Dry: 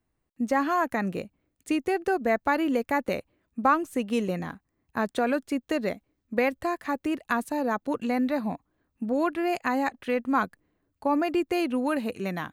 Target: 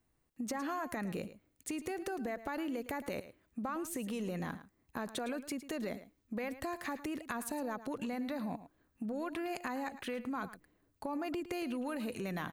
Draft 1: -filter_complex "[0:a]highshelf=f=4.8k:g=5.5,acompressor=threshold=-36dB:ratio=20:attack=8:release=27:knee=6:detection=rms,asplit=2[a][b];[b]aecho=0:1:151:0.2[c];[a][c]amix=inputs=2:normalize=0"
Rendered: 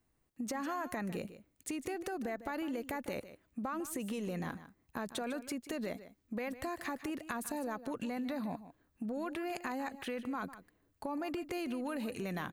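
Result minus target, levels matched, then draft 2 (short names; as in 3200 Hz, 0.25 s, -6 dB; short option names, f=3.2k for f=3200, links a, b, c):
echo 42 ms late
-filter_complex "[0:a]highshelf=f=4.8k:g=5.5,acompressor=threshold=-36dB:ratio=20:attack=8:release=27:knee=6:detection=rms,asplit=2[a][b];[b]aecho=0:1:109:0.2[c];[a][c]amix=inputs=2:normalize=0"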